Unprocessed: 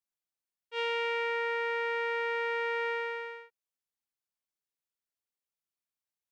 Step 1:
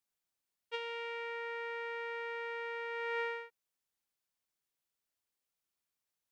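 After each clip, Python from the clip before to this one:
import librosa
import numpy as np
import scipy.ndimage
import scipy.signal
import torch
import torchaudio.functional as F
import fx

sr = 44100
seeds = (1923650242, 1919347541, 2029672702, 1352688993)

y = fx.over_compress(x, sr, threshold_db=-38.0, ratio=-1.0)
y = F.gain(torch.from_numpy(y), -2.0).numpy()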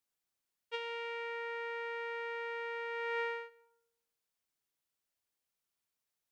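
y = fx.rev_freeverb(x, sr, rt60_s=0.86, hf_ratio=0.4, predelay_ms=65, drr_db=18.5)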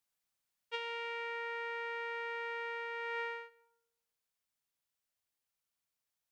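y = fx.peak_eq(x, sr, hz=370.0, db=-6.5, octaves=0.69)
y = fx.rider(y, sr, range_db=10, speed_s=0.5)
y = F.gain(torch.from_numpy(y), 1.0).numpy()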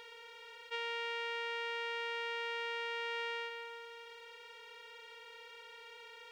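y = fx.bin_compress(x, sr, power=0.2)
y = fx.high_shelf(y, sr, hz=5200.0, db=5.0)
y = F.gain(torch.from_numpy(y), -3.0).numpy()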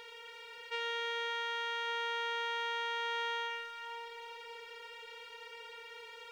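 y = fx.echo_split(x, sr, split_hz=1400.0, low_ms=578, high_ms=84, feedback_pct=52, wet_db=-6.5)
y = F.gain(torch.from_numpy(y), 2.0).numpy()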